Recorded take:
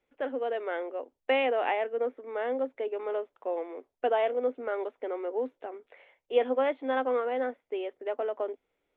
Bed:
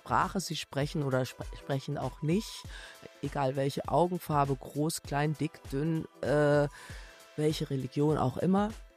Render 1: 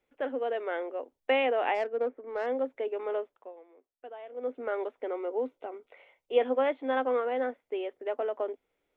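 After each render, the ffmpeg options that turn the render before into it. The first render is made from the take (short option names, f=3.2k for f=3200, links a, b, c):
-filter_complex "[0:a]asplit=3[a][b][c];[a]afade=t=out:st=1.74:d=0.02[d];[b]adynamicsmooth=sensitivity=4:basefreq=1.8k,afade=t=in:st=1.74:d=0.02,afade=t=out:st=2.45:d=0.02[e];[c]afade=t=in:st=2.45:d=0.02[f];[d][e][f]amix=inputs=3:normalize=0,asettb=1/sr,asplit=3[g][h][i];[g]atrim=end=5.134[j];[h]atrim=start=5.13:end=6.39,asetpts=PTS-STARTPTS,afade=t=in:d=0.004:c=qsin,afade=t=out:st=1.256:d=0.004:c=qsin,asuperstop=centerf=1700:order=4:qfactor=6.8[k];[i]atrim=start=6.386[l];[j][k]acrossfade=d=0.004:c1=hsin:c2=qsin[m];[m][l]acrossfade=d=0.004:c1=qsin:c2=hsin,asplit=3[n][o][p];[n]atrim=end=3.53,asetpts=PTS-STARTPTS,afade=t=out:st=3.2:d=0.33:silence=0.125893[q];[o]atrim=start=3.53:end=4.29,asetpts=PTS-STARTPTS,volume=-18dB[r];[p]atrim=start=4.29,asetpts=PTS-STARTPTS,afade=t=in:d=0.33:silence=0.125893[s];[q][r][s]concat=n=3:v=0:a=1"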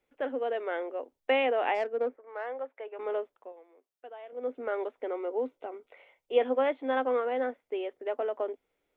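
-filter_complex "[0:a]asettb=1/sr,asplit=3[a][b][c];[a]atrim=end=2.164[d];[b]atrim=start=2.16:end=2.99,asetpts=PTS-STARTPTS,afade=t=in:d=0.004:c=qsin,afade=t=out:st=0.826:d=0.004:c=qsin,highpass=720,lowpass=2.2k[e];[c]atrim=start=2.986[f];[d][e]acrossfade=d=0.004:c1=hsin:c2=qsin[g];[g][f]acrossfade=d=0.004:c1=qsin:c2=hsin,asettb=1/sr,asplit=3[h][i][j];[h]atrim=end=3.524[k];[i]atrim=start=3.52:end=4.33,asetpts=PTS-STARTPTS,afade=t=in:d=0.004:c=qsin,afade=t=out:st=0.806:d=0.004:c=qsin,highpass=f=350:p=1[l];[j]atrim=start=4.326[m];[k][l]acrossfade=d=0.004:c1=hsin:c2=qsin[n];[n][m]acrossfade=d=0.004:c1=qsin:c2=hsin"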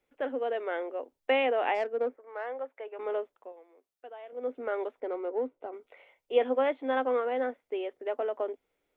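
-filter_complex "[0:a]asettb=1/sr,asplit=3[a][b][c];[a]atrim=end=5.004[d];[b]atrim=start=5:end=5.73,asetpts=PTS-STARTPTS,afade=t=in:d=0.004:c=qsin,afade=t=out:st=0.726:d=0.004:c=qsin,adynamicsmooth=sensitivity=2.5:basefreq=1.9k[e];[c]atrim=start=5.726[f];[d][e]acrossfade=d=0.004:c1=hsin:c2=qsin[g];[g][f]acrossfade=d=0.004:c1=qsin:c2=hsin"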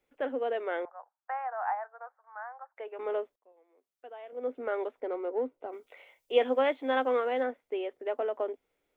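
-filter_complex "[0:a]asettb=1/sr,asplit=3[a][b][c];[a]atrim=end=0.854[d];[b]atrim=start=0.85:end=2.77,asetpts=PTS-STARTPTS,afade=t=in:d=0.004:c=qsin,afade=t=out:st=1.916:d=0.004:c=qsin,asuperpass=centerf=1100:order=8:qfactor=1.2[e];[c]atrim=start=2.766[f];[d][e]acrossfade=d=0.004:c1=hsin:c2=qsin[g];[g][f]acrossfade=d=0.004:c1=qsin:c2=hsin,asettb=1/sr,asplit=3[h][i][j];[h]atrim=end=5.694[k];[i]atrim=start=5.69:end=7.43,asetpts=PTS-STARTPTS,afade=t=in:d=0.004:c=qsin,afade=t=out:st=1.736:d=0.004:c=qsin,highshelf=f=3.2k:g=10[l];[j]atrim=start=7.426[m];[k][l]acrossfade=d=0.004:c1=hsin:c2=qsin[n];[n][m]acrossfade=d=0.004:c1=qsin:c2=hsin,asplit=2[o][p];[o]atrim=end=3.36,asetpts=PTS-STARTPTS,afade=t=out:st=3.356:d=0.004:c=hsin[q];[p]atrim=start=3.36,asetpts=PTS-STARTPTS,afade=t=in:d=0.8[r];[q][r]concat=n=2:v=0:a=1"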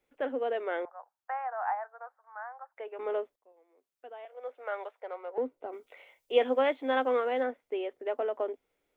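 -filter_complex "[0:a]asettb=1/sr,asplit=3[a][b][c];[a]atrim=end=4.254[d];[b]atrim=start=4.25:end=5.38,asetpts=PTS-STARTPTS,afade=t=in:d=0.004:c=qsin,afade=t=out:st=1.126:d=0.004:c=qsin,highpass=f=590:w=0.5412,highpass=f=590:w=1.3066[e];[c]atrim=start=5.376[f];[d][e]acrossfade=d=0.004:c1=hsin:c2=qsin[g];[g][f]acrossfade=d=0.004:c1=qsin:c2=hsin"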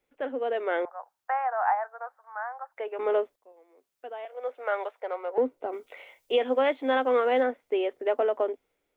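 -af "dynaudnorm=f=180:g=7:m=7dB,alimiter=limit=-15dB:level=0:latency=1:release=386"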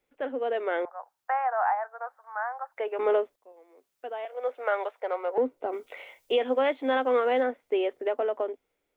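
-af "alimiter=limit=-19dB:level=0:latency=1:release=492,dynaudnorm=f=340:g=9:m=3dB"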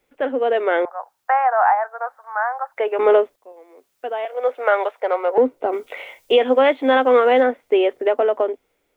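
-af "volume=10dB"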